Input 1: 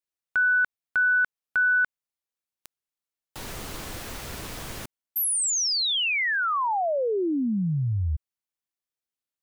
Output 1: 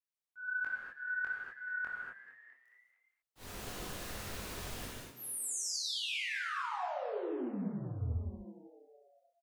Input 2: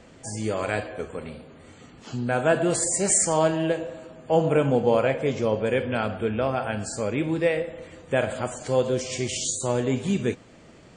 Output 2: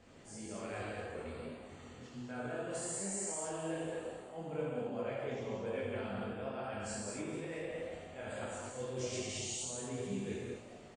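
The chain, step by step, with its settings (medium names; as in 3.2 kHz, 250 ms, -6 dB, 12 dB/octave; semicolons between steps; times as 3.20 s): slow attack 103 ms; reverse; compression, threshold -31 dBFS; reverse; chorus voices 2, 1.3 Hz, delay 22 ms, depth 3 ms; frequency-shifting echo 218 ms, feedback 53%, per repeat +120 Hz, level -14 dB; gated-style reverb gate 270 ms flat, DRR -3.5 dB; trim -8 dB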